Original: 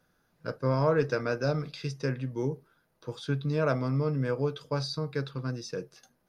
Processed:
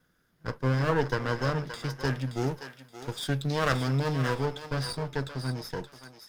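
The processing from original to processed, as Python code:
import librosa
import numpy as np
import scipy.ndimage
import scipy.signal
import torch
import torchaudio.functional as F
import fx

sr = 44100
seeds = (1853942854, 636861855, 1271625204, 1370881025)

y = fx.lower_of_two(x, sr, delay_ms=0.58)
y = fx.high_shelf(y, sr, hz=2500.0, db=10.5, at=(2.04, 4.38), fade=0.02)
y = fx.echo_thinned(y, sr, ms=574, feedback_pct=25, hz=710.0, wet_db=-8)
y = y * librosa.db_to_amplitude(1.5)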